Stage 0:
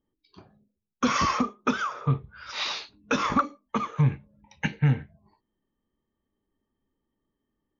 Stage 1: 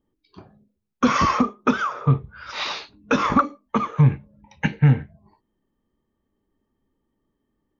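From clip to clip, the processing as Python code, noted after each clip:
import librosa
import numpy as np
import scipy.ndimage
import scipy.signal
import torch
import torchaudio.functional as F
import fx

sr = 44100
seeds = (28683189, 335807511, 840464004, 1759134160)

y = fx.high_shelf(x, sr, hz=2600.0, db=-8.0)
y = F.gain(torch.from_numpy(y), 6.5).numpy()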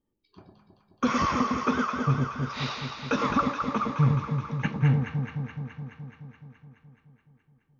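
y = fx.echo_alternate(x, sr, ms=106, hz=920.0, feedback_pct=84, wet_db=-4.0)
y = F.gain(torch.from_numpy(y), -7.0).numpy()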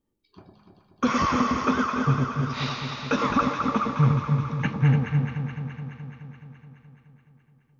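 y = x + 10.0 ** (-8.5 / 20.0) * np.pad(x, (int(291 * sr / 1000.0), 0))[:len(x)]
y = F.gain(torch.from_numpy(y), 2.0).numpy()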